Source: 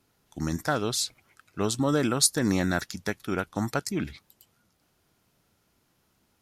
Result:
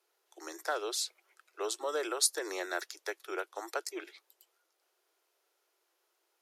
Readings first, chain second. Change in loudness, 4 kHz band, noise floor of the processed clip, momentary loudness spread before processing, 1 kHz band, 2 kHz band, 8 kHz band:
−7.5 dB, −6.0 dB, −79 dBFS, 12 LU, −6.0 dB, −6.0 dB, −6.0 dB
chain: Butterworth high-pass 340 Hz 96 dB per octave
level −6 dB

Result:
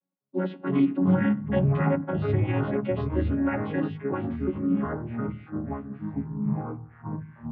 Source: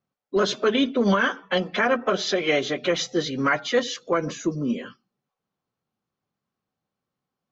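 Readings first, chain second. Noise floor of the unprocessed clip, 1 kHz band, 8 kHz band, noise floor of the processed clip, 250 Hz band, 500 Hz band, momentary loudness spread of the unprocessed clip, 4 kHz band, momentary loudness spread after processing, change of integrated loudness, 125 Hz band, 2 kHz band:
below −85 dBFS, −7.0 dB, can't be measured, −52 dBFS, +2.0 dB, −6.0 dB, 7 LU, below −20 dB, 12 LU, −3.5 dB, +9.5 dB, −12.0 dB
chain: channel vocoder with a chord as carrier bare fifth, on F#3
low-pass filter 2,700 Hz 24 dB per octave
notch filter 1,300 Hz, Q 21
delay with pitch and tempo change per echo 194 ms, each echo −5 semitones, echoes 3
level −3.5 dB

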